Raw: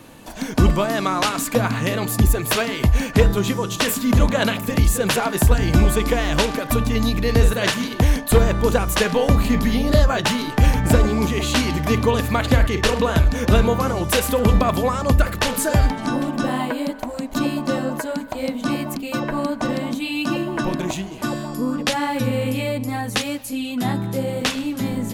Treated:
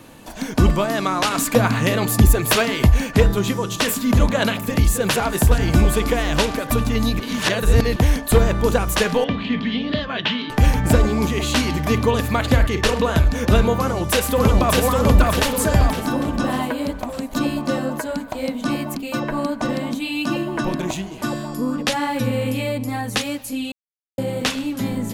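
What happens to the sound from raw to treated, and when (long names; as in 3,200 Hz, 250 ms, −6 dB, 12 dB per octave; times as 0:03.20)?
0:01.31–0:02.94: clip gain +3 dB
0:04.58–0:05.35: delay throw 420 ms, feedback 80%, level −16.5 dB
0:07.20–0:07.96: reverse
0:09.24–0:10.50: loudspeaker in its box 190–3,700 Hz, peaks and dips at 360 Hz −7 dB, 560 Hz −8 dB, 820 Hz −9 dB, 1,300 Hz −6 dB, 3,200 Hz +7 dB
0:13.76–0:14.82: delay throw 600 ms, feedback 50%, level −1.5 dB
0:23.72–0:24.18: silence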